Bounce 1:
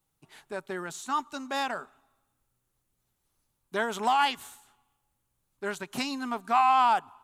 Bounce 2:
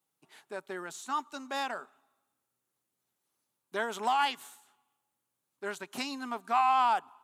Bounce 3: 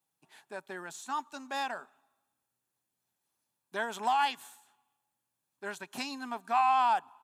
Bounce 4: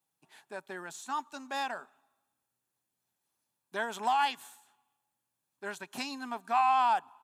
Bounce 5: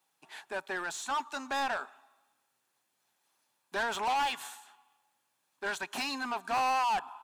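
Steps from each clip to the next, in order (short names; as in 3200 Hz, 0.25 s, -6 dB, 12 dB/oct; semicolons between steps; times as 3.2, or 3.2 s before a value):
HPF 230 Hz 12 dB/oct; gain -3.5 dB
comb 1.2 ms, depth 30%; gain -1.5 dB
nothing audible
overdrive pedal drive 25 dB, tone 4400 Hz, clips at -16.5 dBFS; gain -7 dB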